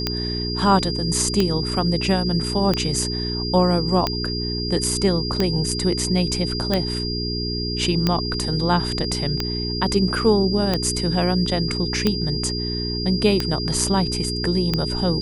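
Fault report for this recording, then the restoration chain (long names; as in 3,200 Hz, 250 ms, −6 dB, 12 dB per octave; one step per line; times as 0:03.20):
mains hum 60 Hz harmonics 7 −27 dBFS
scratch tick 45 rpm −6 dBFS
whistle 4,800 Hz −27 dBFS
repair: click removal
notch filter 4,800 Hz, Q 30
hum removal 60 Hz, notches 7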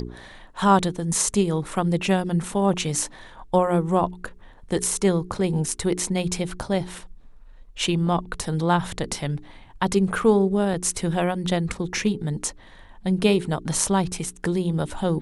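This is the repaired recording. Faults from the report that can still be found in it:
none of them is left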